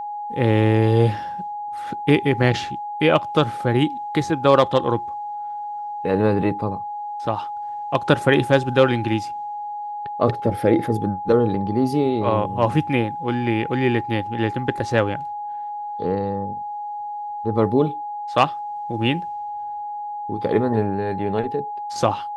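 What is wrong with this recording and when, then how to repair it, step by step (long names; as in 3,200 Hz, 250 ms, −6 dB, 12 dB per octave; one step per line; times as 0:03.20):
whistle 830 Hz −27 dBFS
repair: notch filter 830 Hz, Q 30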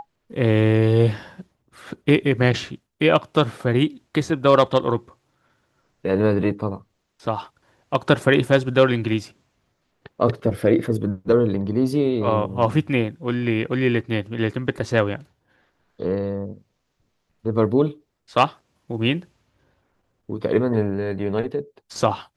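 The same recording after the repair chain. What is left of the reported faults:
none of them is left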